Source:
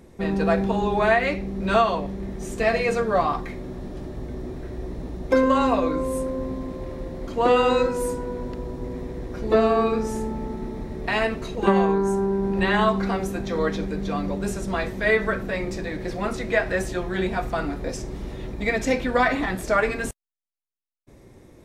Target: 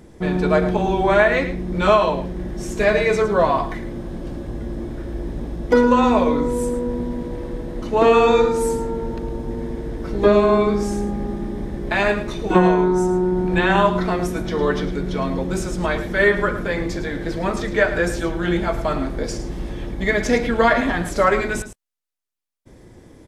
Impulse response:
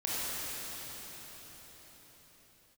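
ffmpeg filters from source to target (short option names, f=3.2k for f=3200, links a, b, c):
-af "aecho=1:1:100:0.251,asetrate=41013,aresample=44100,volume=4dB"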